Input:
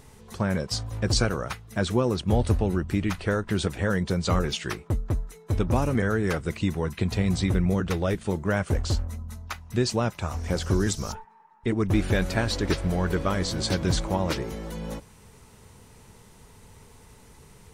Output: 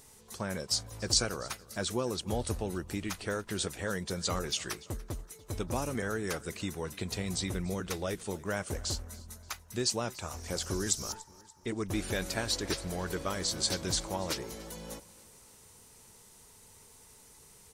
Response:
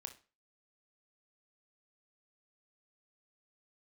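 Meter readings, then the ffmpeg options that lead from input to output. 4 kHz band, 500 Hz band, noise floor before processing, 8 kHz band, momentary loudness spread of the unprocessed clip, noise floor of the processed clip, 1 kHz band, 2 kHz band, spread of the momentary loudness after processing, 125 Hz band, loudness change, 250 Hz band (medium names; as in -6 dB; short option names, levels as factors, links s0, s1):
-1.5 dB, -8.0 dB, -53 dBFS, +2.5 dB, 8 LU, -57 dBFS, -7.5 dB, -7.0 dB, 12 LU, -13.0 dB, -7.5 dB, -11.0 dB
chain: -filter_complex "[0:a]bass=f=250:g=-6,treble=f=4000:g=11,asplit=2[s0][s1];[s1]aecho=0:1:289|578|867|1156:0.0891|0.0437|0.0214|0.0105[s2];[s0][s2]amix=inputs=2:normalize=0,volume=0.422"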